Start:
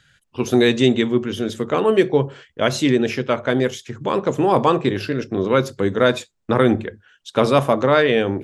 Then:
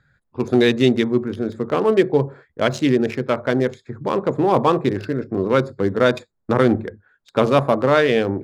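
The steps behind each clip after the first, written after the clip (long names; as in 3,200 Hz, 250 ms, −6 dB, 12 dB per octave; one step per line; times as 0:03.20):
adaptive Wiener filter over 15 samples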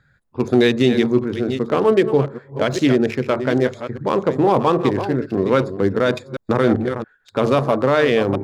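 delay that plays each chunk backwards 398 ms, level −11 dB
brickwall limiter −7 dBFS, peak gain reduction 5.5 dB
level +2 dB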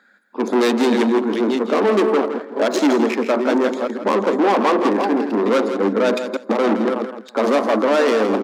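soft clipping −19.5 dBFS, distortion −7 dB
Chebyshev high-pass with heavy ripple 200 Hz, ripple 3 dB
repeating echo 165 ms, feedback 17%, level −9.5 dB
level +8.5 dB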